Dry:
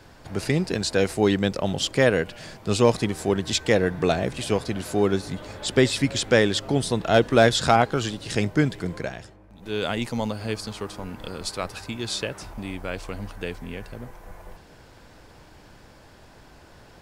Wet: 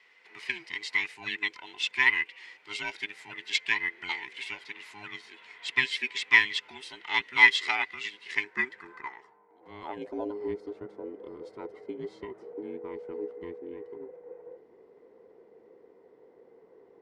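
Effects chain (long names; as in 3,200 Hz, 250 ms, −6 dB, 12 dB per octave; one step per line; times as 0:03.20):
frequency inversion band by band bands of 500 Hz
parametric band 2,000 Hz +8 dB 0.27 octaves
band-pass filter sweep 2,500 Hz → 420 Hz, 0:08.11–0:10.43
dynamic equaliser 1,100 Hz, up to −5 dB, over −44 dBFS, Q 1.6
expander for the loud parts 1.5 to 1, over −41 dBFS
level +7.5 dB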